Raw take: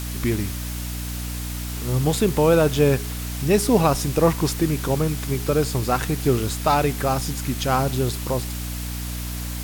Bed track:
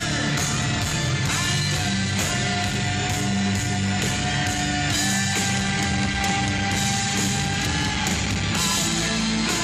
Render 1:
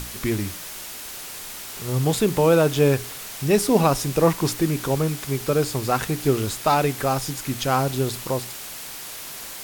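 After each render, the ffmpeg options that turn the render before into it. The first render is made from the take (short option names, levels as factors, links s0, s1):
-af "bandreject=f=60:t=h:w=6,bandreject=f=120:t=h:w=6,bandreject=f=180:t=h:w=6,bandreject=f=240:t=h:w=6,bandreject=f=300:t=h:w=6"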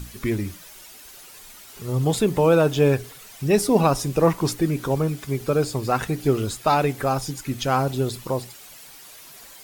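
-af "afftdn=nr=11:nf=-36"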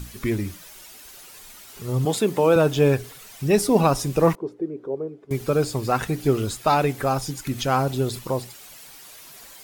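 -filter_complex "[0:a]asettb=1/sr,asplit=3[s0][s1][s2];[s0]atrim=end=2.054[s3];[s1]atrim=start=2.05:end=2.56,asetpts=PTS-STARTPTS,afade=t=in:d=0.004:c=qsin,afade=t=out:st=0.506:d=0.004:c=qsin,highpass=200[s4];[s2]atrim=start=2.556[s5];[s3][s4]acrossfade=d=0.004:c1=hsin:c2=qsin[s6];[s6][s5]acrossfade=d=0.004:c1=qsin:c2=hsin,asettb=1/sr,asplit=3[s7][s8][s9];[s7]atrim=end=4.354[s10];[s8]atrim=start=4.35:end=5.31,asetpts=PTS-STARTPTS,afade=t=in:d=0.004:c=qsin,afade=t=out:st=0.956:d=0.004:c=qsin,bandpass=f=410:t=q:w=3.4[s11];[s9]atrim=start=5.306[s12];[s10][s11]acrossfade=d=0.004:c1=hsin:c2=qsin[s13];[s13][s12]acrossfade=d=0.004:c1=qsin:c2=hsin,asettb=1/sr,asplit=3[s14][s15][s16];[s14]atrim=end=7.474[s17];[s15]atrim=start=7.47:end=8.19,asetpts=PTS-STARTPTS,afade=t=in:d=0.004:c=qsin,afade=t=out:st=0.716:d=0.004:c=qsin,acompressor=mode=upward:threshold=0.0562:ratio=2.5:attack=3.2:release=140:knee=2.83:detection=peak[s18];[s16]atrim=start=8.186[s19];[s17][s18]acrossfade=d=0.004:c1=hsin:c2=qsin[s20];[s20][s19]acrossfade=d=0.004:c1=qsin:c2=hsin"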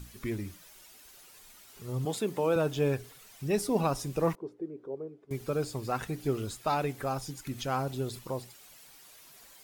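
-af "volume=0.316"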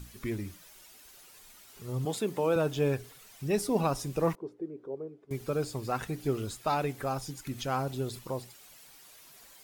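-af anull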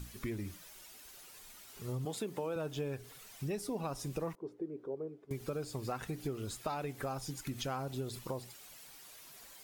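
-af "acompressor=threshold=0.0178:ratio=6"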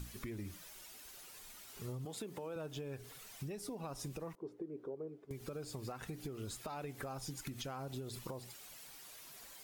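-af "alimiter=level_in=2.24:limit=0.0631:level=0:latency=1:release=190,volume=0.447,acompressor=threshold=0.01:ratio=6"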